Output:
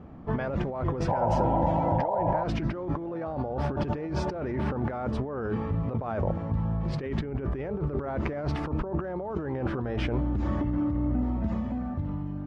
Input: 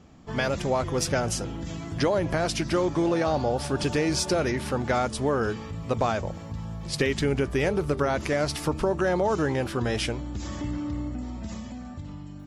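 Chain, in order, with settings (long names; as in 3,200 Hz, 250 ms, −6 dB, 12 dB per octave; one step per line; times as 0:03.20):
low-pass filter 1,300 Hz 12 dB per octave
compressor whose output falls as the input rises −32 dBFS, ratio −1
sound drawn into the spectrogram noise, 0:01.08–0:02.44, 490–1,000 Hz −30 dBFS
level +2.5 dB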